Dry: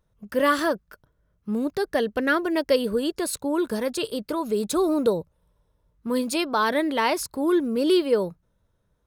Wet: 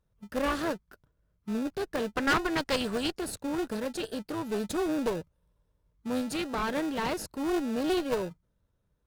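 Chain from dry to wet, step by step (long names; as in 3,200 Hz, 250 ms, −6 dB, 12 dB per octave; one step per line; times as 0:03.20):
gain on a spectral selection 0:02.17–0:03.12, 690–9,100 Hz +10 dB
in parallel at −5 dB: decimation without filtering 40×
on the sum: asymmetric clip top −22.5 dBFS, bottom −8 dBFS
highs frequency-modulated by the lows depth 0.16 ms
level −8 dB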